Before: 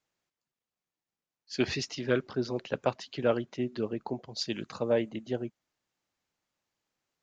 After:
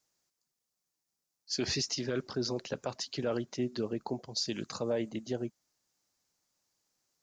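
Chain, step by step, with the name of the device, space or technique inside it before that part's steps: over-bright horn tweeter (resonant high shelf 4 kHz +8 dB, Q 1.5; peak limiter -23 dBFS, peak gain reduction 10.5 dB)

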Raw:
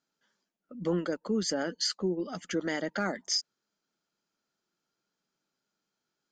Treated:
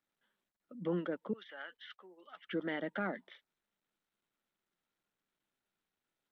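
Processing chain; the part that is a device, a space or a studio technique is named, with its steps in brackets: 1.33–2.52 s: high-pass 1.3 kHz 12 dB/octave; Bluetooth headset (high-pass 120 Hz 24 dB/octave; resampled via 8 kHz; trim -5.5 dB; SBC 64 kbps 32 kHz)

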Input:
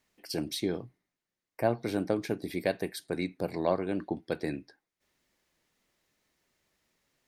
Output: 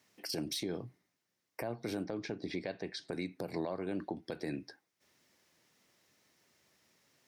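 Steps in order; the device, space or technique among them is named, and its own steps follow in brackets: broadcast voice chain (high-pass 83 Hz 24 dB/octave; de-esser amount 75%; compression 5:1, threshold -37 dBFS, peak gain reduction 15 dB; peaking EQ 5.5 kHz +4.5 dB 0.33 oct; peak limiter -31.5 dBFS, peak gain reduction 7 dB); 2.05–3.09 s: low-pass 5.7 kHz 24 dB/octave; trim +4.5 dB

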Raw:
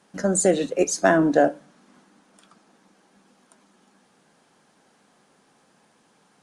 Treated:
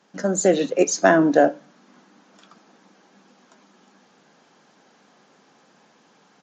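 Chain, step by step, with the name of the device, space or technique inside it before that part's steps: Bluetooth headset (high-pass 150 Hz 12 dB/octave; level rider gain up to 4.5 dB; resampled via 16 kHz; SBC 64 kbps 16 kHz)

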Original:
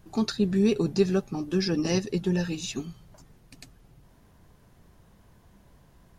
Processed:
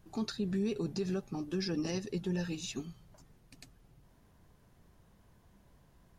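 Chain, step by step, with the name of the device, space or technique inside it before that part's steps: clipper into limiter (hard clipper -11.5 dBFS, distortion -39 dB; peak limiter -19.5 dBFS, peak gain reduction 8 dB); trim -6.5 dB

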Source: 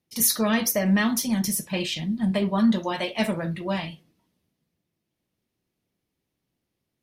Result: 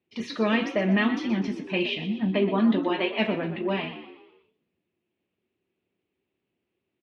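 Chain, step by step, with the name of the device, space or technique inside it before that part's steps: frequency-shifting delay pedal into a guitar cabinet (frequency-shifting echo 123 ms, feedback 45%, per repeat +54 Hz, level -12 dB; cabinet simulation 85–3400 Hz, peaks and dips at 140 Hz -8 dB, 380 Hz +9 dB, 2.6 kHz +7 dB); trim -1.5 dB

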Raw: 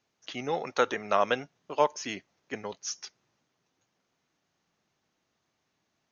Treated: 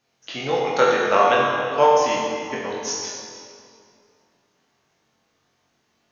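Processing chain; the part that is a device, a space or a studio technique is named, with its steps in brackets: tunnel (flutter echo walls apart 3.8 m, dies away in 0.3 s; reverberation RT60 2.4 s, pre-delay 13 ms, DRR -2 dB); trim +4 dB

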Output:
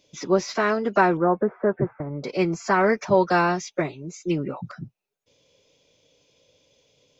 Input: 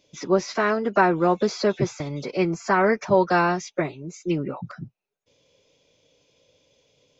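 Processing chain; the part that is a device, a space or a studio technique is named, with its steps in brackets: exciter from parts (in parallel at -12 dB: high-pass 2.2 kHz 12 dB/octave + saturation -33.5 dBFS, distortion -9 dB); 1.17–2.24 s: on the sum: elliptic low-pass 1.7 kHz, stop band 60 dB

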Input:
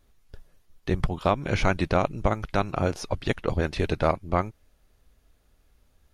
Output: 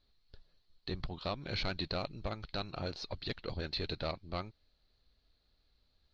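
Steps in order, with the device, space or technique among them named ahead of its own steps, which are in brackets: overdriven synthesiser ladder filter (saturation -17 dBFS, distortion -12 dB; four-pole ladder low-pass 4.4 kHz, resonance 85%); trim +1 dB

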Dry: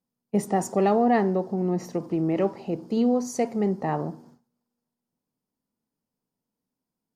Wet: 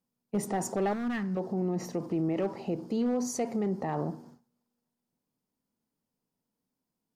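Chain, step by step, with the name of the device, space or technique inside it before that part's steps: clipper into limiter (hard clipper -16 dBFS, distortion -18 dB; peak limiter -22.5 dBFS, peak gain reduction 6.5 dB); 0.93–1.37 s: high-order bell 540 Hz -14.5 dB

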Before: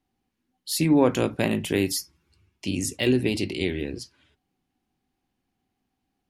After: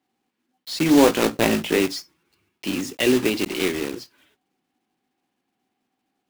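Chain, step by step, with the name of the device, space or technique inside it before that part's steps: early digital voice recorder (band-pass 240–4000 Hz; block-companded coder 3-bit); 0.92–1.80 s: doubling 18 ms -7 dB; trim +4.5 dB

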